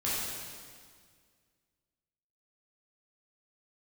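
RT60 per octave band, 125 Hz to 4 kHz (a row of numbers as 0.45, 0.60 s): 2.2, 2.1, 1.9, 1.8, 1.8, 1.7 s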